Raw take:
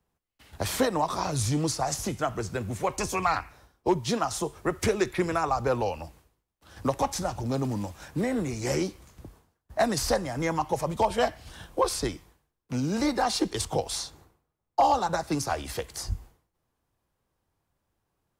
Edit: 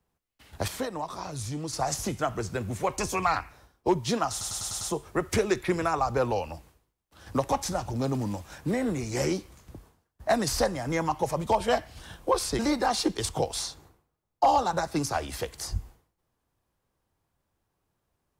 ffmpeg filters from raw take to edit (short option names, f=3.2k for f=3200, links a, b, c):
-filter_complex "[0:a]asplit=9[a][b][c][d][e][f][g][h][i];[a]atrim=end=0.682[j];[b]atrim=start=0.678:end=1.732,asetpts=PTS-STARTPTS,volume=-7.5dB[k];[c]atrim=start=1.728:end=4.412[l];[d]atrim=start=4.308:end=4.412[m];[e]atrim=start=4.308:end=4.412[n];[f]atrim=start=4.308:end=4.412[o];[g]atrim=start=4.308:end=4.412[p];[h]atrim=start=4.308:end=12.092[q];[i]atrim=start=12.948[r];[j][k]acrossfade=d=0.004:c1=hsin:c2=hsin[s];[s][l]acrossfade=d=0.004:c1=hsin:c2=hsin[t];[t][m]acrossfade=d=0.004:c1=hsin:c2=hsin[u];[u][n]acrossfade=d=0.004:c1=hsin:c2=hsin[v];[v][o]acrossfade=d=0.004:c1=hsin:c2=hsin[w];[w][p]acrossfade=d=0.004:c1=hsin:c2=hsin[x];[x][q]acrossfade=d=0.004:c1=hsin:c2=hsin[y];[y][r]acrossfade=d=0.004:c1=hsin:c2=hsin"